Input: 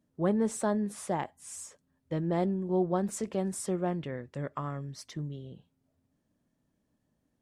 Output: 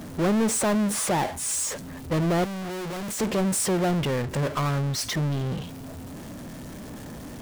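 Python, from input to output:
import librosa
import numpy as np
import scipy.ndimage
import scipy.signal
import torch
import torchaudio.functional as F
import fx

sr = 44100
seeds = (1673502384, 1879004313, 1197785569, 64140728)

y = fx.power_curve(x, sr, exponent=0.35)
y = fx.clip_hard(y, sr, threshold_db=-32.0, at=(2.44, 3.2))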